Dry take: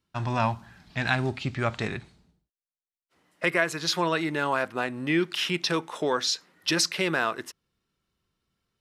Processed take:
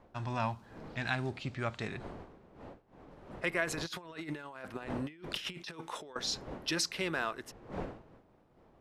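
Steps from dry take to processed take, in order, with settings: wind noise 570 Hz -42 dBFS; 3.67–6.16 s: compressor with a negative ratio -32 dBFS, ratio -0.5; trim -8.5 dB

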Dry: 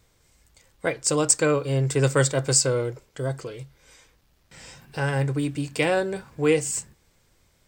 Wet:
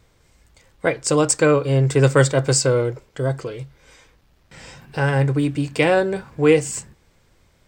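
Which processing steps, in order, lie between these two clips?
treble shelf 4.9 kHz -9 dB; trim +6 dB

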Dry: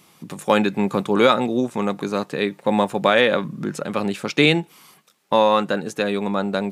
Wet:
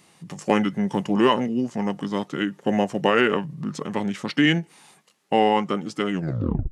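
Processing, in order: tape stop on the ending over 0.60 s; formant shift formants -4 st; trim -2.5 dB

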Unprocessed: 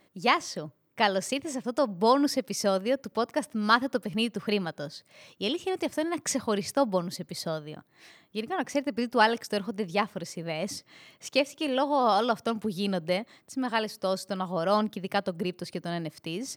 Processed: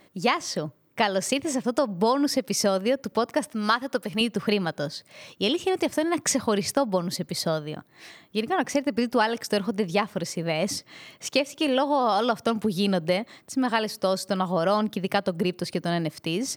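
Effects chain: 3.48–4.21 s: bass shelf 390 Hz -8 dB; compression 5:1, threshold -26 dBFS, peak gain reduction 10 dB; trim +7 dB

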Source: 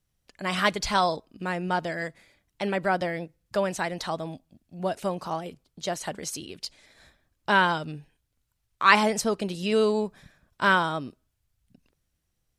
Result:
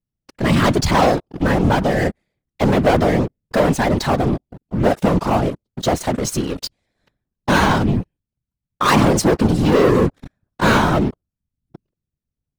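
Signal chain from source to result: tilt shelf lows +7 dB, about 700 Hz; waveshaping leveller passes 5; whisper effect; trim -3 dB

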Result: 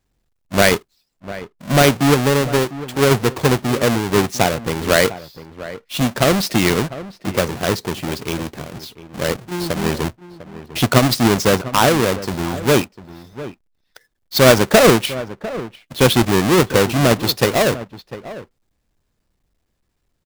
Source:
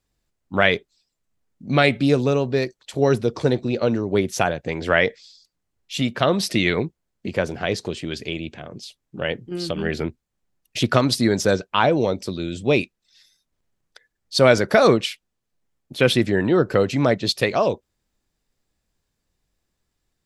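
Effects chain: square wave that keeps the level; echo from a far wall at 120 m, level -15 dB

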